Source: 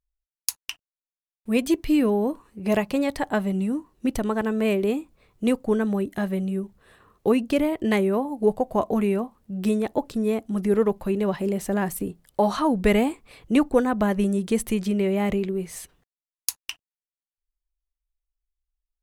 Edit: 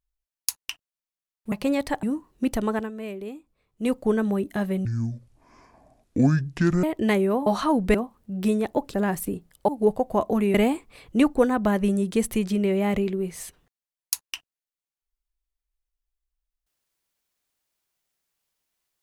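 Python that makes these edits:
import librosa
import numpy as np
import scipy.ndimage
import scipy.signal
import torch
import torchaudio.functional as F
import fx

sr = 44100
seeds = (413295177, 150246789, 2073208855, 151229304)

y = fx.edit(x, sr, fx.cut(start_s=1.52, length_s=1.29),
    fx.cut(start_s=3.32, length_s=0.33),
    fx.fade_down_up(start_s=4.35, length_s=1.21, db=-12.0, fade_s=0.18),
    fx.speed_span(start_s=6.47, length_s=1.19, speed=0.6),
    fx.swap(start_s=8.29, length_s=0.86, other_s=12.42, other_length_s=0.48),
    fx.cut(start_s=10.15, length_s=1.53), tone=tone)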